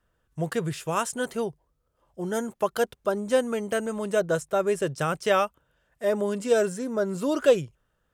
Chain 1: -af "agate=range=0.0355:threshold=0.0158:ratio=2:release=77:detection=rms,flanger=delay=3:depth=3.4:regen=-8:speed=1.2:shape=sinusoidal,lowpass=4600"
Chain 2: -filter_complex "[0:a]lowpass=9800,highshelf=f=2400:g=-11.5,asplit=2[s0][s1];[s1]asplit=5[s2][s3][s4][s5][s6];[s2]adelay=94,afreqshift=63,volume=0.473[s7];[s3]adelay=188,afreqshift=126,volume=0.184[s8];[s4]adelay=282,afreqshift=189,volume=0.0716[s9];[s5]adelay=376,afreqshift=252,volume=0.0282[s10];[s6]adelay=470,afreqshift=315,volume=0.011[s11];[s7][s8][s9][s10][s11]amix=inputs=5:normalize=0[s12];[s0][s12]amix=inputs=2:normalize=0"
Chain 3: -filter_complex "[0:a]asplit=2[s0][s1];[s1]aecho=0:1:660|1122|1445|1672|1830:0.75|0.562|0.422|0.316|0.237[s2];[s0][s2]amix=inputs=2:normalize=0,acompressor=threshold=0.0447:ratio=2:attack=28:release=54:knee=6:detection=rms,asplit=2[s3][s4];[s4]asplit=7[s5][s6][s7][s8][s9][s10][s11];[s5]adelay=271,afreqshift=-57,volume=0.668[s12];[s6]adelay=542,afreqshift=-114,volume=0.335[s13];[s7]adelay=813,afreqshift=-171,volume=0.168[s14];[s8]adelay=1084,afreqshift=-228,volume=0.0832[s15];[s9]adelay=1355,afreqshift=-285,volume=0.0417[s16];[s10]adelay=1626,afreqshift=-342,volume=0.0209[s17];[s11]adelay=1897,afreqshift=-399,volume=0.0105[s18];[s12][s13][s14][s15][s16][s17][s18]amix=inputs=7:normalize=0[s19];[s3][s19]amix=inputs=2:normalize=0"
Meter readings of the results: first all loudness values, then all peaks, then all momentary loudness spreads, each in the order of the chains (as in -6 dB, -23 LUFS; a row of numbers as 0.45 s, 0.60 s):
-31.0 LUFS, -26.5 LUFS, -25.5 LUFS; -12.0 dBFS, -9.0 dBFS, -11.0 dBFS; 7 LU, 9 LU, 5 LU